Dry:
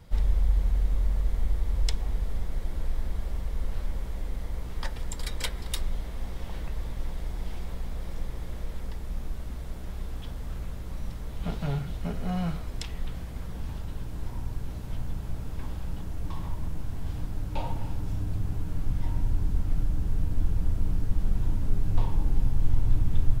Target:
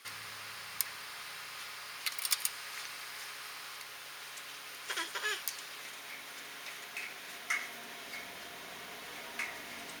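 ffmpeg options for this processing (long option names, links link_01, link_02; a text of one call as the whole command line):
ffmpeg -i in.wav -af "highpass=740,lowpass=6900,bandreject=frequency=3300:width=6,asetrate=103194,aresample=44100,volume=7.5dB" out.wav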